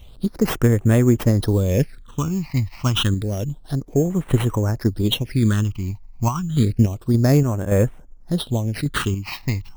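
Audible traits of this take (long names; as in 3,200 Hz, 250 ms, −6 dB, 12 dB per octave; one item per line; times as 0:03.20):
aliases and images of a low sample rate 7,000 Hz, jitter 0%
phaser sweep stages 8, 0.29 Hz, lowest notch 440–4,600 Hz
sample-and-hold tremolo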